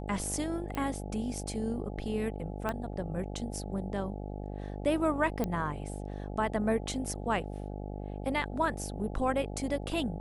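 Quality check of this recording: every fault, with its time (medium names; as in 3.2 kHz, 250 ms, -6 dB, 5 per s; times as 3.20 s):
buzz 50 Hz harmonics 17 -39 dBFS
0.75 s: pop -22 dBFS
2.69 s: pop -19 dBFS
5.44 s: pop -18 dBFS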